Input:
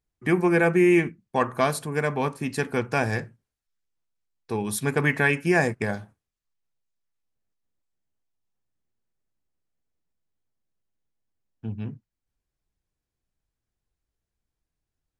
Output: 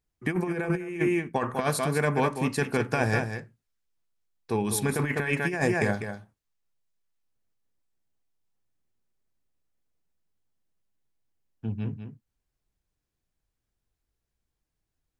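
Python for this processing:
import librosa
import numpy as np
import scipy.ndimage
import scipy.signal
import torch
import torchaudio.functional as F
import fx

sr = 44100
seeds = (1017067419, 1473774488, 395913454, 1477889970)

p1 = x + fx.echo_single(x, sr, ms=199, db=-8.5, dry=0)
p2 = fx.over_compress(p1, sr, threshold_db=-23.0, ratio=-0.5)
y = p2 * 10.0 ** (-1.5 / 20.0)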